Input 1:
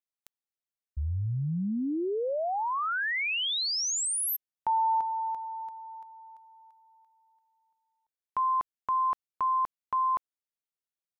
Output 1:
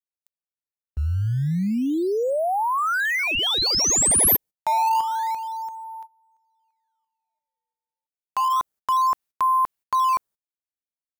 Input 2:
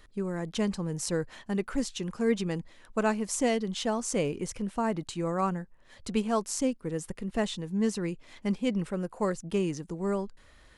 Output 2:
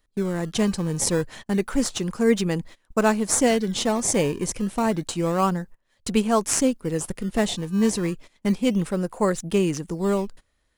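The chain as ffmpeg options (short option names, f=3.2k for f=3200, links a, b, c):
-filter_complex "[0:a]agate=range=-21dB:threshold=-45dB:ratio=16:release=160:detection=rms,highshelf=f=6.4k:g=9.5,asplit=2[a][b];[b]acrusher=samples=18:mix=1:aa=0.000001:lfo=1:lforange=28.8:lforate=0.29,volume=-11dB[c];[a][c]amix=inputs=2:normalize=0,volume=5dB"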